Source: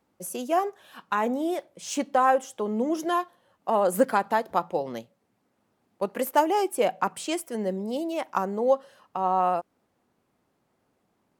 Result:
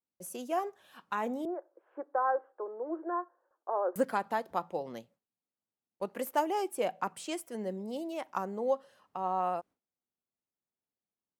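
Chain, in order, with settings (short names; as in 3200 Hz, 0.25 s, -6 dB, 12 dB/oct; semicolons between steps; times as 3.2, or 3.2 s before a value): 1.45–3.96 Chebyshev band-pass 330–1600 Hz, order 4; gate with hold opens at -56 dBFS; gain -8 dB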